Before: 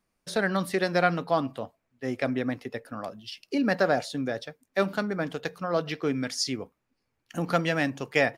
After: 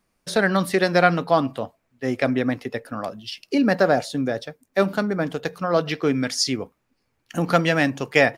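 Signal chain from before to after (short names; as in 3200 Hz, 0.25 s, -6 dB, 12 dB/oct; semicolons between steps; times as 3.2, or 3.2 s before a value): 3.64–5.53 bell 2800 Hz -3.5 dB 2.9 oct; gain +6.5 dB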